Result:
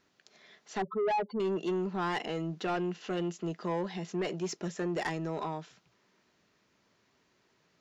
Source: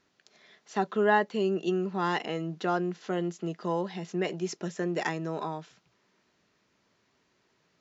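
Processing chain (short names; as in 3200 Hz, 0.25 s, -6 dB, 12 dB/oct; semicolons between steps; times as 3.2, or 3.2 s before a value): 0.82–1.4 spectral contrast raised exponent 3.8; 2.65–3.36 bell 2800 Hz +10 dB 0.21 oct; soft clip -26 dBFS, distortion -12 dB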